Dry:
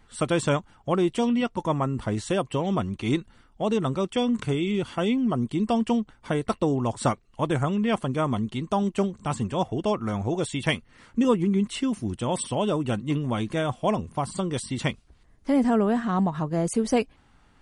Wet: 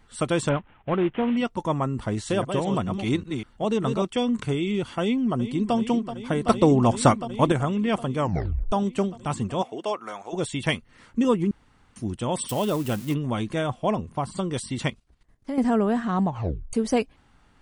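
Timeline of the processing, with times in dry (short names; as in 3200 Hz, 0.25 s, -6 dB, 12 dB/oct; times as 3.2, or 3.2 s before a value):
0.49–1.37 CVSD 16 kbps
2.06–4.05 reverse delay 0.196 s, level -6 dB
5.01–5.75 echo throw 0.38 s, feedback 85%, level -11.5 dB
6.47–7.52 gain +6 dB
8.18 tape stop 0.54 s
9.61–10.32 HPF 350 Hz -> 770 Hz
11.51–11.96 room tone
12.49–13.14 switching spikes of -27 dBFS
13.67–14.37 high shelf 5100 Hz -7 dB
14.88–15.58 level quantiser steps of 14 dB
16.27 tape stop 0.46 s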